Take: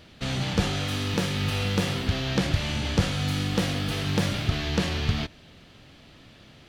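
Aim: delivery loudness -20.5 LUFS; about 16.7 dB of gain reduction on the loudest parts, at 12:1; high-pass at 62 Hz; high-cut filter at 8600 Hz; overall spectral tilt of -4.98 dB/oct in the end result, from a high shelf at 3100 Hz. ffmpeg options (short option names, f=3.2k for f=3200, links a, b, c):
-af "highpass=62,lowpass=8.6k,highshelf=f=3.1k:g=-7,acompressor=threshold=-36dB:ratio=12,volume=20dB"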